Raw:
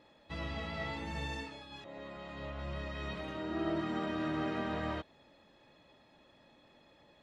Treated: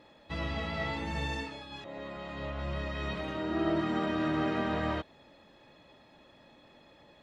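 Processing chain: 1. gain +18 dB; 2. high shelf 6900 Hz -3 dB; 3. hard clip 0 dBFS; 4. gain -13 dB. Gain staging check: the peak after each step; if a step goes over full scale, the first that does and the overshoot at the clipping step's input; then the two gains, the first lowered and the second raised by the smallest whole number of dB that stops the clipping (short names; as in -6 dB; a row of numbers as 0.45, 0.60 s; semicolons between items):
-6.0, -6.0, -6.0, -19.0 dBFS; no overload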